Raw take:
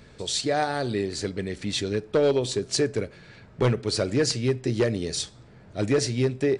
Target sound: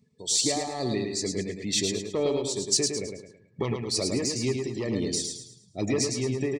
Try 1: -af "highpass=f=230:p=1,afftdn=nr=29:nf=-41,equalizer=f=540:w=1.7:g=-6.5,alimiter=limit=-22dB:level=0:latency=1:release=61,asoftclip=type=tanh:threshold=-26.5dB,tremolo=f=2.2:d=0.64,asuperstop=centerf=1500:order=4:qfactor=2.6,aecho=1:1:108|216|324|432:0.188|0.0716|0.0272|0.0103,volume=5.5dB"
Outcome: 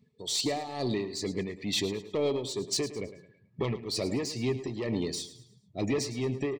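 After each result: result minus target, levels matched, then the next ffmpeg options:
soft clip: distortion +13 dB; echo-to-direct -9.5 dB; 8000 Hz band -5.5 dB
-af "highpass=f=230:p=1,afftdn=nr=29:nf=-41,equalizer=f=540:w=1.7:g=-6.5,alimiter=limit=-22dB:level=0:latency=1:release=61,asoftclip=type=tanh:threshold=-18.5dB,tremolo=f=2.2:d=0.64,asuperstop=centerf=1500:order=4:qfactor=2.6,aecho=1:1:108|216|324|432:0.188|0.0716|0.0272|0.0103,volume=5.5dB"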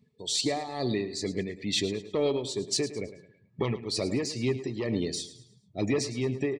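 echo-to-direct -9.5 dB; 8000 Hz band -5.5 dB
-af "highpass=f=230:p=1,afftdn=nr=29:nf=-41,equalizer=f=540:w=1.7:g=-6.5,alimiter=limit=-22dB:level=0:latency=1:release=61,asoftclip=type=tanh:threshold=-18.5dB,tremolo=f=2.2:d=0.64,asuperstop=centerf=1500:order=4:qfactor=2.6,aecho=1:1:108|216|324|432|540:0.562|0.214|0.0812|0.0309|0.0117,volume=5.5dB"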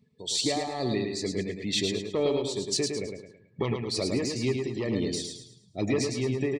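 8000 Hz band -5.5 dB
-af "highpass=f=230:p=1,afftdn=nr=29:nf=-41,equalizer=f=540:w=1.7:g=-6.5,alimiter=limit=-22dB:level=0:latency=1:release=61,asoftclip=type=tanh:threshold=-18.5dB,tremolo=f=2.2:d=0.64,asuperstop=centerf=1500:order=4:qfactor=2.6,highshelf=f=4.7k:t=q:w=1.5:g=6,aecho=1:1:108|216|324|432|540:0.562|0.214|0.0812|0.0309|0.0117,volume=5.5dB"

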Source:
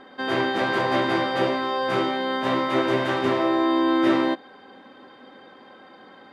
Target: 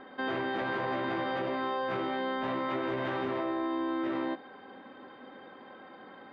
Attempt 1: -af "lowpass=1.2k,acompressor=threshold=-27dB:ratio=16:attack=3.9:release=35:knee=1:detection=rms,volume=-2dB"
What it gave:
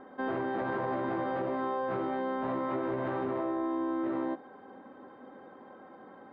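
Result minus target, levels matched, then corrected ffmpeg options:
4000 Hz band -12.5 dB
-af "lowpass=2.9k,acompressor=threshold=-27dB:ratio=16:attack=3.9:release=35:knee=1:detection=rms,volume=-2dB"

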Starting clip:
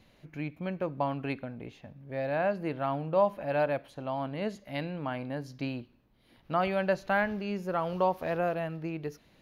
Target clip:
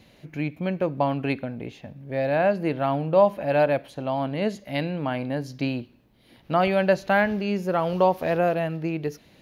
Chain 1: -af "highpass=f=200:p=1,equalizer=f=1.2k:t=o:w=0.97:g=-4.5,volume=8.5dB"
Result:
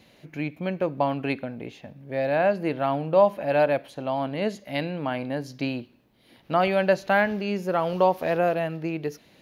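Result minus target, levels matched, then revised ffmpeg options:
125 Hz band -3.0 dB
-af "highpass=f=67:p=1,equalizer=f=1.2k:t=o:w=0.97:g=-4.5,volume=8.5dB"

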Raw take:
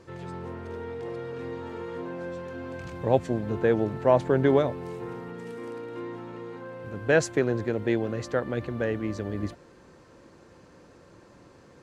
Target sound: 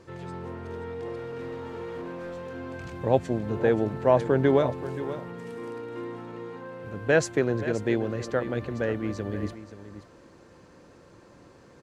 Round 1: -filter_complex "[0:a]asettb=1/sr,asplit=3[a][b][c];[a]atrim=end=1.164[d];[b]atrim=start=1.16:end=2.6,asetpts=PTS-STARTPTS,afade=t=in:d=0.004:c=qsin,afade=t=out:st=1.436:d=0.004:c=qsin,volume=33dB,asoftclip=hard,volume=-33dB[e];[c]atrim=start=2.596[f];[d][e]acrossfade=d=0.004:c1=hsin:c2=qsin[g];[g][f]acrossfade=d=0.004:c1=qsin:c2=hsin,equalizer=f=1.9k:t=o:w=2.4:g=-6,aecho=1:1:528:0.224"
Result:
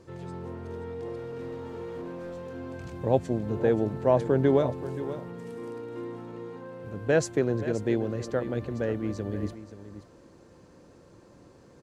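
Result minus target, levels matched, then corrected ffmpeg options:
2000 Hz band -4.5 dB
-filter_complex "[0:a]asettb=1/sr,asplit=3[a][b][c];[a]atrim=end=1.164[d];[b]atrim=start=1.16:end=2.6,asetpts=PTS-STARTPTS,afade=t=in:d=0.004:c=qsin,afade=t=out:st=1.436:d=0.004:c=qsin,volume=33dB,asoftclip=hard,volume=-33dB[e];[c]atrim=start=2.596[f];[d][e]acrossfade=d=0.004:c1=hsin:c2=qsin[g];[g][f]acrossfade=d=0.004:c1=qsin:c2=hsin,aecho=1:1:528:0.224"

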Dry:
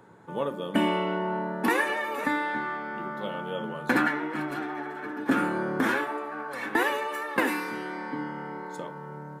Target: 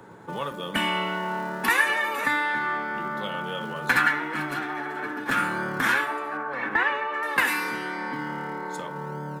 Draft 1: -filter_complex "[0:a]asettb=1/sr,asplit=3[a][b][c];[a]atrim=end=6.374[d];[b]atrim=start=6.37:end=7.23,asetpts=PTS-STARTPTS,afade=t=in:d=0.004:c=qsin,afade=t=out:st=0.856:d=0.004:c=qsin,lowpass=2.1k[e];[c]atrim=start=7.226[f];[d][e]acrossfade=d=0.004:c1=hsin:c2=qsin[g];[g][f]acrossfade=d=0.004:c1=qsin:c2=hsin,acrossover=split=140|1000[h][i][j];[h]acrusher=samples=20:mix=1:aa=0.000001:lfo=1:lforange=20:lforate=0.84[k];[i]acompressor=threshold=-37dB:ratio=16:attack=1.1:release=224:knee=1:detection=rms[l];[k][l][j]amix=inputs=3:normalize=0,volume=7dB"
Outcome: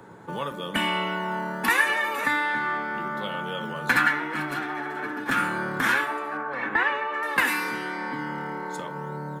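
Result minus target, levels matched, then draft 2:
decimation with a swept rate: distortion -10 dB
-filter_complex "[0:a]asettb=1/sr,asplit=3[a][b][c];[a]atrim=end=6.374[d];[b]atrim=start=6.37:end=7.23,asetpts=PTS-STARTPTS,afade=t=in:d=0.004:c=qsin,afade=t=out:st=0.856:d=0.004:c=qsin,lowpass=2.1k[e];[c]atrim=start=7.226[f];[d][e]acrossfade=d=0.004:c1=hsin:c2=qsin[g];[g][f]acrossfade=d=0.004:c1=qsin:c2=hsin,acrossover=split=140|1000[h][i][j];[h]acrusher=samples=54:mix=1:aa=0.000001:lfo=1:lforange=54:lforate=0.84[k];[i]acompressor=threshold=-37dB:ratio=16:attack=1.1:release=224:knee=1:detection=rms[l];[k][l][j]amix=inputs=3:normalize=0,volume=7dB"

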